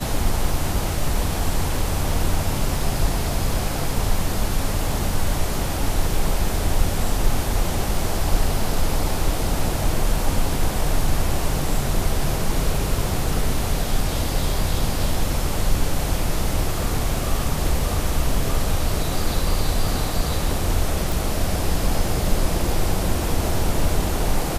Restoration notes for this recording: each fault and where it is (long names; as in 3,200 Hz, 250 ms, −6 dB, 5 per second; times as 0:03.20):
0:21.12: click